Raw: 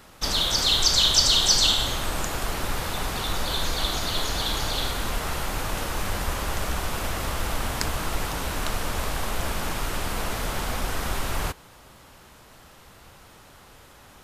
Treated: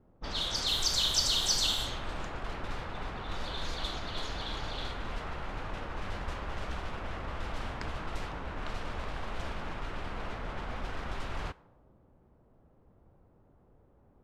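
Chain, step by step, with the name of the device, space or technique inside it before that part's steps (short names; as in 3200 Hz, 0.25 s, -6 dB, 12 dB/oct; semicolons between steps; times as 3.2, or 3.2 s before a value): cassette deck with a dynamic noise filter (white noise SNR 25 dB; low-pass opened by the level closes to 420 Hz, open at -17.5 dBFS); gain -9 dB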